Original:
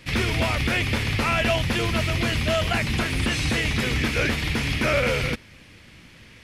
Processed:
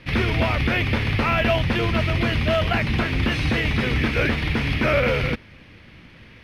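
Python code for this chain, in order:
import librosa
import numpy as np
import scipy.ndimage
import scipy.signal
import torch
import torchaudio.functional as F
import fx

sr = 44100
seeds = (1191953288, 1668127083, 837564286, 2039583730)

y = fx.high_shelf(x, sr, hz=7700.0, db=-10.0)
y = np.repeat(scipy.signal.resample_poly(y, 1, 3), 3)[:len(y)]
y = fx.air_absorb(y, sr, metres=100.0)
y = F.gain(torch.from_numpy(y), 3.0).numpy()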